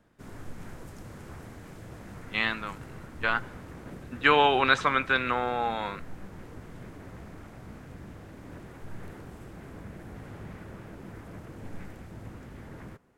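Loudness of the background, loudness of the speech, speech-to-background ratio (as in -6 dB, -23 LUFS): -45.0 LUFS, -26.0 LUFS, 19.0 dB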